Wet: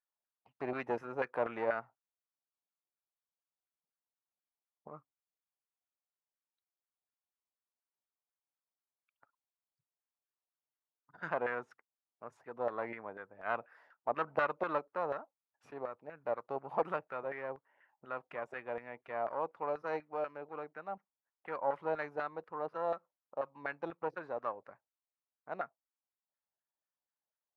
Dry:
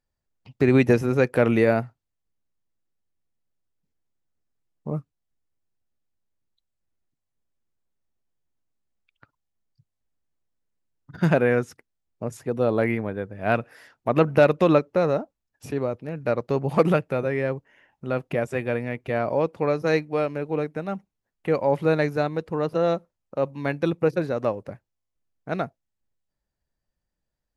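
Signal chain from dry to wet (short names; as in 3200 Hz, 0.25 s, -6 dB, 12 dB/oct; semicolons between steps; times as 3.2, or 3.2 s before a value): one diode to ground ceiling -20 dBFS; LFO band-pass saw down 4.1 Hz 720–1500 Hz; gain -4 dB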